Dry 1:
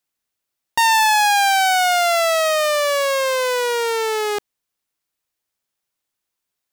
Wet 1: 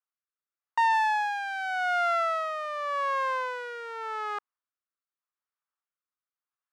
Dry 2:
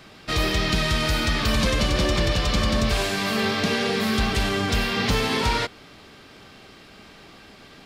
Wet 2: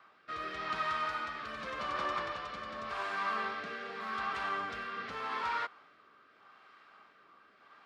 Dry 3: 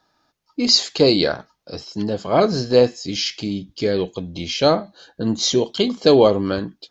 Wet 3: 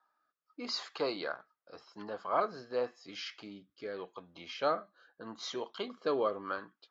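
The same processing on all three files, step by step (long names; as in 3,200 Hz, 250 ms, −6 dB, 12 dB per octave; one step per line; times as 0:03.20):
resonant band-pass 1,200 Hz, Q 3.1
rotating-speaker cabinet horn 0.85 Hz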